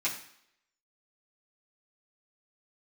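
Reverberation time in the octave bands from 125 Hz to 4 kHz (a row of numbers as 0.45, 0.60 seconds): 0.50, 0.65, 0.65, 0.70, 0.70, 0.70 seconds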